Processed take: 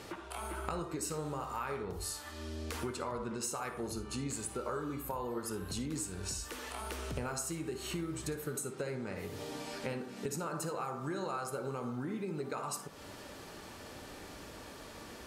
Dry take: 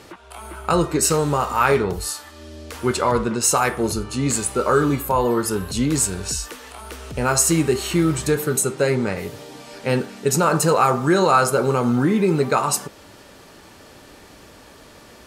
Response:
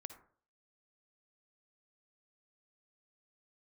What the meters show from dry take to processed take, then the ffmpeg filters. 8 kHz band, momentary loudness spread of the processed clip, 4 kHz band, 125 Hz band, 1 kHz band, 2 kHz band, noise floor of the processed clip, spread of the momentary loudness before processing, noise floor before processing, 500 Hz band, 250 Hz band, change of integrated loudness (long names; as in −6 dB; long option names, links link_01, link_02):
−18.5 dB, 11 LU, −15.5 dB, −18.0 dB, −19.5 dB, −18.0 dB, −49 dBFS, 15 LU, −46 dBFS, −19.0 dB, −18.5 dB, −20.0 dB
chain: -filter_complex "[0:a]acompressor=threshold=-32dB:ratio=10[link_01];[1:a]atrim=start_sample=2205[link_02];[link_01][link_02]afir=irnorm=-1:irlink=0,volume=1.5dB"